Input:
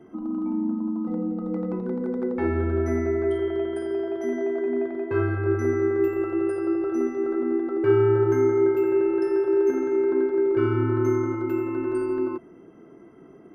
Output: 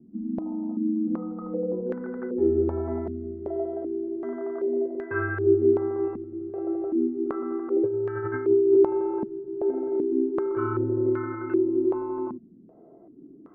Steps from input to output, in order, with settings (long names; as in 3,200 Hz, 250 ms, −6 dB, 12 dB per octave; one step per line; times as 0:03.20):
0:07.70–0:08.77: compressor whose output falls as the input rises −24 dBFS, ratio −1
low-pass on a step sequencer 2.6 Hz 220–1,600 Hz
level −6.5 dB